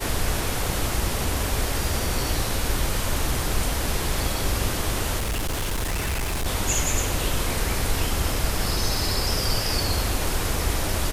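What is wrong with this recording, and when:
5.18–6.47 clipped -22.5 dBFS

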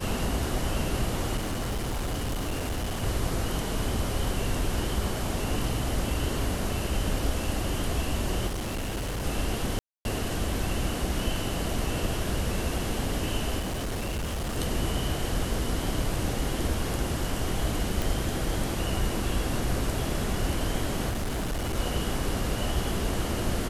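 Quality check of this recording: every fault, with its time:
1.36–3.04 clipped -26.5 dBFS
8.47–9.26 clipped -28 dBFS
9.79–10.05 gap 0.261 s
13.59–14.58 clipped -27.5 dBFS
18.02 pop
21.09–21.76 clipped -26 dBFS

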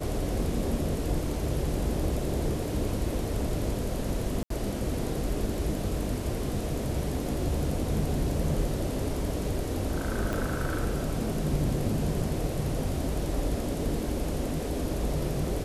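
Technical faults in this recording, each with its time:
4.43–4.5 gap 73 ms
10.33 pop

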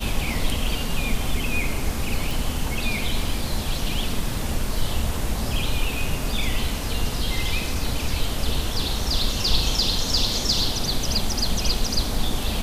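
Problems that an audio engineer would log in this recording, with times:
2.31 pop

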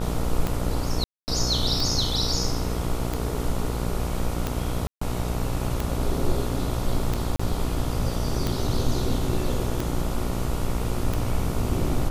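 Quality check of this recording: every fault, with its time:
buzz 60 Hz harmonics 24 -29 dBFS
tick 45 rpm
1.04–1.28 gap 0.239 s
4.87–5.01 gap 0.144 s
7.36–7.39 gap 35 ms

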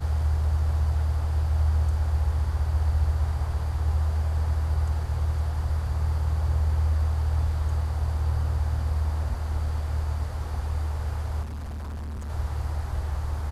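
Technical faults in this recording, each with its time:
11.42–12.3 clipped -31.5 dBFS

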